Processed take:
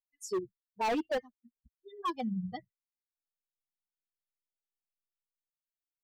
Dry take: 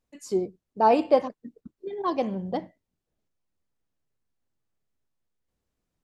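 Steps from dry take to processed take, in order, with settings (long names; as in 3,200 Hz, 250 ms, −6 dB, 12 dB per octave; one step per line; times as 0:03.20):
spectral dynamics exaggerated over time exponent 3
in parallel at −1.5 dB: downward compressor, threshold −34 dBFS, peak gain reduction 16.5 dB
on the sum: hard clipping −25 dBFS, distortion −5 dB
level −3 dB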